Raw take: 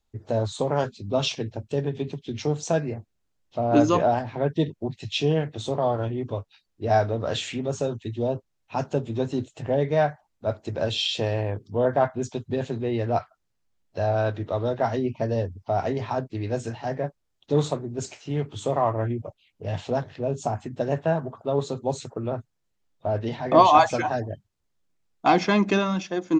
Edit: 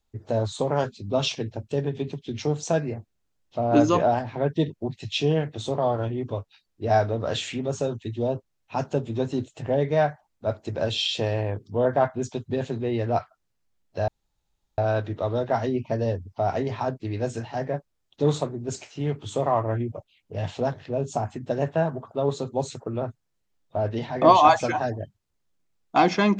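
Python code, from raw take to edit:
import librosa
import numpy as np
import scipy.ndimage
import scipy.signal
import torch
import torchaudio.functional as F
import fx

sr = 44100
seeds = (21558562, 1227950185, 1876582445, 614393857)

y = fx.edit(x, sr, fx.insert_room_tone(at_s=14.08, length_s=0.7), tone=tone)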